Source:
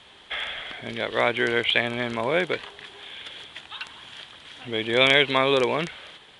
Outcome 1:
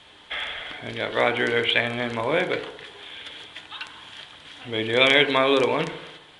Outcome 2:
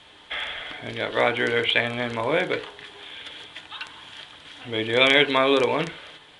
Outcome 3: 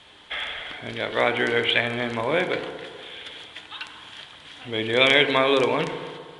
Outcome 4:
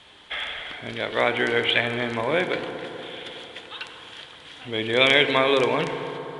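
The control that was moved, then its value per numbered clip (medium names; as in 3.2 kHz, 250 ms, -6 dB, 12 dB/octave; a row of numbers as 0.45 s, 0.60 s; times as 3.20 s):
FDN reverb, RT60: 0.86 s, 0.37 s, 1.9 s, 4.1 s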